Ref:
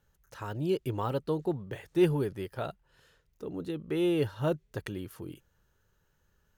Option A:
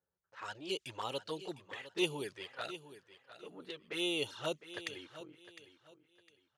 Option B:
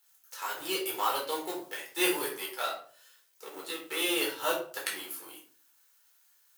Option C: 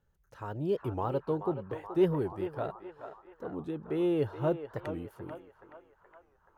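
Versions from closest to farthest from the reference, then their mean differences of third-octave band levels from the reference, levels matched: C, A, B; 6.0, 8.5, 16.0 decibels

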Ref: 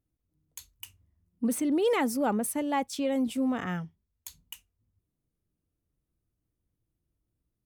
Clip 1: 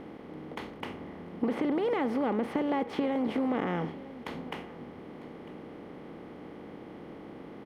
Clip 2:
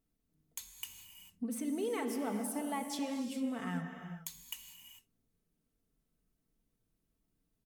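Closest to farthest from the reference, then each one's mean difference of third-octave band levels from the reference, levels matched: 2, 1; 8.0, 12.0 decibels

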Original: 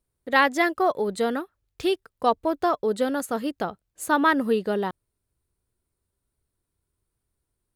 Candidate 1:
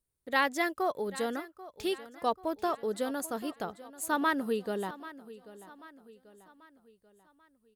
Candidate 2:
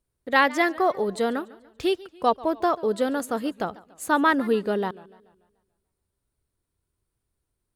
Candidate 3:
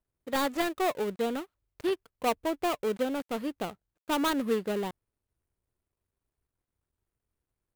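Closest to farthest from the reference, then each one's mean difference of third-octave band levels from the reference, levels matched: 2, 1, 3; 2.0, 3.5, 7.0 decibels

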